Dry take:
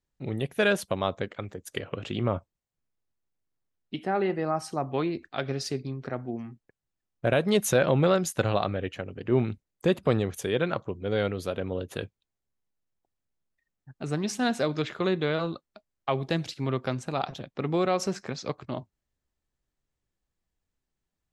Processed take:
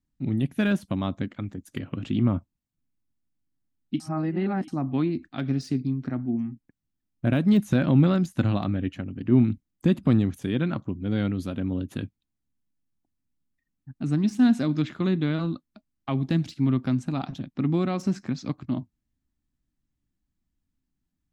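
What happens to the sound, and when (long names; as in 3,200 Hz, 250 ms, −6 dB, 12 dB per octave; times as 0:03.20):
0:04.00–0:04.68: reverse
whole clip: de-essing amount 85%; low shelf with overshoot 350 Hz +8 dB, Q 3; level −3.5 dB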